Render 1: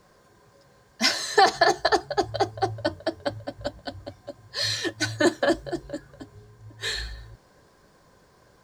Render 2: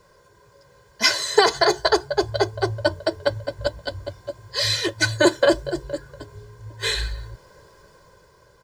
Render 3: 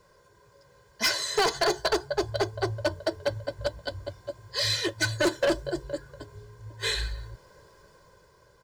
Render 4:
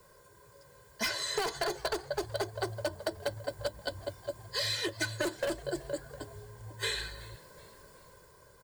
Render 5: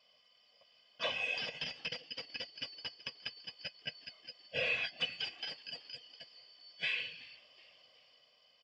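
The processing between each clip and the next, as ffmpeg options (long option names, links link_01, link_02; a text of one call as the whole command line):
ffmpeg -i in.wav -af "aecho=1:1:2:0.67,dynaudnorm=framelen=190:gausssize=9:maxgain=5dB" out.wav
ffmpeg -i in.wav -af "volume=14.5dB,asoftclip=hard,volume=-14.5dB,volume=-4.5dB" out.wav
ffmpeg -i in.wav -filter_complex "[0:a]aexciter=amount=2.4:drive=7.3:freq=7800,acrossover=split=130|5600[link_01][link_02][link_03];[link_01]acompressor=threshold=-50dB:ratio=4[link_04];[link_02]acompressor=threshold=-31dB:ratio=4[link_05];[link_03]acompressor=threshold=-47dB:ratio=4[link_06];[link_04][link_05][link_06]amix=inputs=3:normalize=0,asplit=4[link_07][link_08][link_09][link_10];[link_08]adelay=375,afreqshift=100,volume=-22dB[link_11];[link_09]adelay=750,afreqshift=200,volume=-29.3dB[link_12];[link_10]adelay=1125,afreqshift=300,volume=-36.7dB[link_13];[link_07][link_11][link_12][link_13]amix=inputs=4:normalize=0" out.wav
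ffmpeg -i in.wav -af "afftfilt=real='real(if(lt(b,272),68*(eq(floor(b/68),0)*3+eq(floor(b/68),1)*2+eq(floor(b/68),2)*1+eq(floor(b/68),3)*0)+mod(b,68),b),0)':imag='imag(if(lt(b,272),68*(eq(floor(b/68),0)*3+eq(floor(b/68),1)*2+eq(floor(b/68),2)*1+eq(floor(b/68),3)*0)+mod(b,68),b),0)':win_size=2048:overlap=0.75,aexciter=amount=2:drive=4.7:freq=2100,highpass=170,equalizer=frequency=210:width_type=q:width=4:gain=-9,equalizer=frequency=480:width_type=q:width=4:gain=8,equalizer=frequency=750:width_type=q:width=4:gain=6,lowpass=frequency=3200:width=0.5412,lowpass=frequency=3200:width=1.3066,volume=-4dB" out.wav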